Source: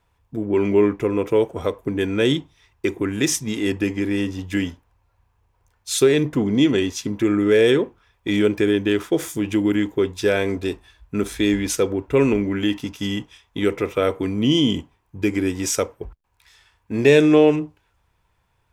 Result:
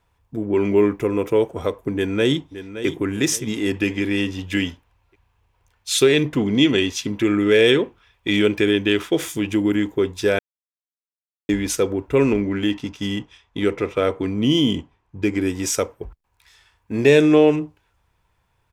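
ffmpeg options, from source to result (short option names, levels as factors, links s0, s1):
-filter_complex "[0:a]asettb=1/sr,asplit=3[s0][s1][s2];[s0]atrim=end=0.774[s3];[s1]atrim=start=0.77:end=1.3,asetpts=PTS-STARTPTS,afade=t=in:d=0.004:c=qsin,afade=t=out:st=0.526:d=0.004:c=qsin,highshelf=f=9200:g=7.5[s4];[s2]atrim=start=1.296[s5];[s3][s4]acrossfade=d=0.004:c1=hsin:c2=qsin[s6];[s6][s5]acrossfade=d=0.004:c1=qsin:c2=hsin,asplit=2[s7][s8];[s8]afade=t=in:st=1.94:d=0.01,afade=t=out:st=2.87:d=0.01,aecho=0:1:570|1140|1710|2280:0.251189|0.087916|0.0307706|0.0107697[s9];[s7][s9]amix=inputs=2:normalize=0,asettb=1/sr,asplit=3[s10][s11][s12];[s10]atrim=end=3.744[s13];[s11]atrim=start=3.74:end=9.47,asetpts=PTS-STARTPTS,afade=t=in:d=0.004:c=qsin,afade=t=out:st=5.726:d=0.004:c=qsin,equalizer=f=2900:w=1.1:g=7[s14];[s12]atrim=start=9.466[s15];[s13][s14]acrossfade=d=0.004:c1=hsin:c2=qsin[s16];[s16][s15]acrossfade=d=0.004:c1=qsin:c2=hsin,asettb=1/sr,asplit=3[s17][s18][s19];[s17]atrim=end=12.214[s20];[s18]atrim=start=12.21:end=15.41,asetpts=PTS-STARTPTS,afade=t=in:d=0.004:c=qsin,afade=t=out:st=3.196:d=0.004:c=qsin,adynamicsmooth=sensitivity=7:basefreq=6500[s21];[s19]atrim=start=15.406[s22];[s20][s21]acrossfade=d=0.004:c1=hsin:c2=qsin[s23];[s23][s22]acrossfade=d=0.004:c1=qsin:c2=hsin,asplit=3[s24][s25][s26];[s24]atrim=end=10.39,asetpts=PTS-STARTPTS,afade=t=out:st=10.386:d=0.004:c=hsin[s27];[s25]atrim=start=10.39:end=11.49,asetpts=PTS-STARTPTS,volume=0[s28];[s26]atrim=start=11.49,asetpts=PTS-STARTPTS,afade=t=in:d=0.004:c=hsin[s29];[s27][s28][s29]concat=n=3:v=0:a=1"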